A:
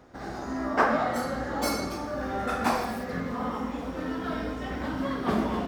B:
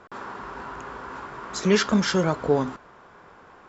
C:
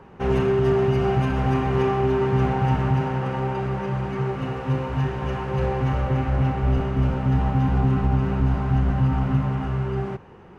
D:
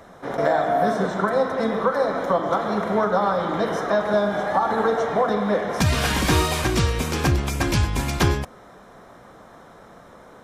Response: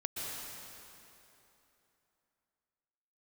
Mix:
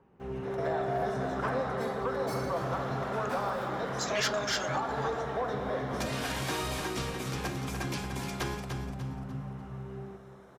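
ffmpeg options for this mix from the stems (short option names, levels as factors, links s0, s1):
-filter_complex "[0:a]adelay=650,volume=0.2,asplit=2[s0][s1];[s1]volume=0.355[s2];[1:a]highpass=1400,adelay=2450,volume=0.794[s3];[2:a]equalizer=f=270:w=0.4:g=5,volume=0.1,asplit=2[s4][s5];[s5]volume=0.282[s6];[3:a]highpass=310,adelay=200,volume=0.266,asplit=2[s7][s8];[s8]volume=0.422[s9];[4:a]atrim=start_sample=2205[s10];[s2][s10]afir=irnorm=-1:irlink=0[s11];[s6][s9]amix=inputs=2:normalize=0,aecho=0:1:296|592|888|1184|1480:1|0.36|0.13|0.0467|0.0168[s12];[s0][s3][s4][s7][s11][s12]amix=inputs=6:normalize=0,asoftclip=type=tanh:threshold=0.0841"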